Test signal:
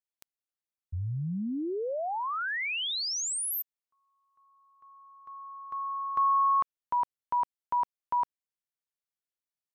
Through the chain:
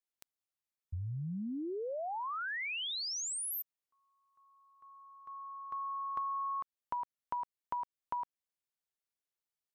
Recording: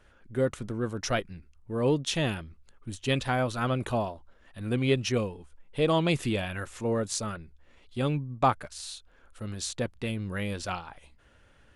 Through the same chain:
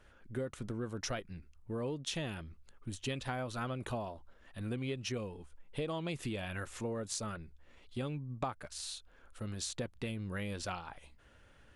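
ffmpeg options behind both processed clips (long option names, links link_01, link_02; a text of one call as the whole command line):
ffmpeg -i in.wav -af "acompressor=threshold=-35dB:ratio=6:attack=47:release=179:knee=6:detection=rms,volume=-2dB" out.wav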